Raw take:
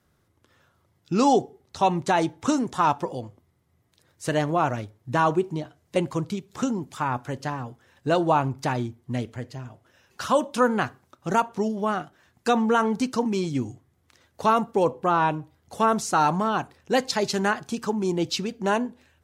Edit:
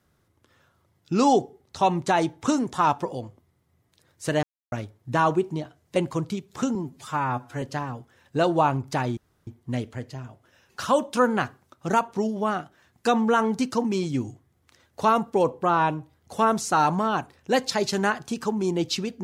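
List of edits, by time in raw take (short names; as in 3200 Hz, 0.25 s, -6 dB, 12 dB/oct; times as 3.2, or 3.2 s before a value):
4.43–4.72 mute
6.75–7.33 stretch 1.5×
8.88 insert room tone 0.30 s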